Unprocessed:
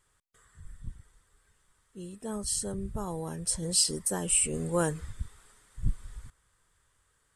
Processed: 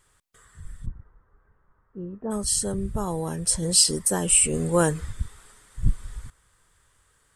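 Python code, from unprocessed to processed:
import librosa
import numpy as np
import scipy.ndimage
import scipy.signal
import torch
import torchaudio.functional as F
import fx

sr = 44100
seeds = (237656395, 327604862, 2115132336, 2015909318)

y = fx.lowpass(x, sr, hz=1400.0, slope=24, at=(0.85, 2.3), fade=0.02)
y = y * librosa.db_to_amplitude(7.0)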